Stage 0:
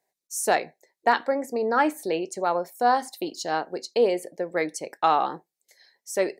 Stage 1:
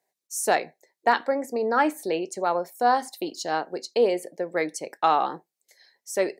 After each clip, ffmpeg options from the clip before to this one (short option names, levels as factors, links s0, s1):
-af "highpass=120"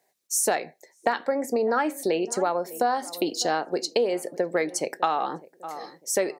-filter_complex "[0:a]asplit=2[s0][s1];[s1]adelay=602,lowpass=f=920:p=1,volume=0.0891,asplit=2[s2][s3];[s3]adelay=602,lowpass=f=920:p=1,volume=0.43,asplit=2[s4][s5];[s5]adelay=602,lowpass=f=920:p=1,volume=0.43[s6];[s0][s2][s4][s6]amix=inputs=4:normalize=0,acompressor=threshold=0.0355:ratio=6,equalizer=f=960:w=6.6:g=-2,volume=2.51"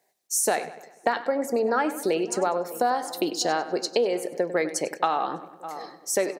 -filter_complex "[0:a]asplit=2[s0][s1];[s1]adelay=98,lowpass=f=4900:p=1,volume=0.211,asplit=2[s2][s3];[s3]adelay=98,lowpass=f=4900:p=1,volume=0.53,asplit=2[s4][s5];[s5]adelay=98,lowpass=f=4900:p=1,volume=0.53,asplit=2[s6][s7];[s7]adelay=98,lowpass=f=4900:p=1,volume=0.53,asplit=2[s8][s9];[s9]adelay=98,lowpass=f=4900:p=1,volume=0.53[s10];[s0][s2][s4][s6][s8][s10]amix=inputs=6:normalize=0"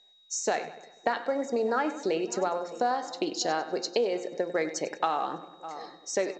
-af "aeval=exprs='val(0)+0.00178*sin(2*PI*3800*n/s)':c=same,bandreject=f=173.9:t=h:w=4,bandreject=f=347.8:t=h:w=4,bandreject=f=521.7:t=h:w=4,bandreject=f=695.6:t=h:w=4,bandreject=f=869.5:t=h:w=4,bandreject=f=1043.4:t=h:w=4,bandreject=f=1217.3:t=h:w=4,bandreject=f=1391.2:t=h:w=4,bandreject=f=1565.1:t=h:w=4,bandreject=f=1739:t=h:w=4,bandreject=f=1912.9:t=h:w=4,bandreject=f=2086.8:t=h:w=4,bandreject=f=2260.7:t=h:w=4,bandreject=f=2434.6:t=h:w=4,bandreject=f=2608.5:t=h:w=4,bandreject=f=2782.4:t=h:w=4,bandreject=f=2956.3:t=h:w=4,bandreject=f=3130.2:t=h:w=4,volume=0.668" -ar 16000 -c:a pcm_mulaw